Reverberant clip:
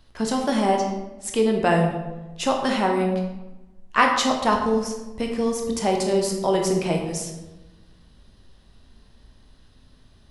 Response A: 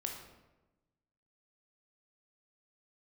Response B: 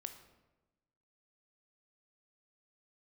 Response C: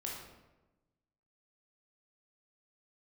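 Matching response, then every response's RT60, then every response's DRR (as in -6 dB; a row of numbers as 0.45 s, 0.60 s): A; 1.1 s, 1.1 s, 1.1 s; 1.5 dB, 7.0 dB, -3.0 dB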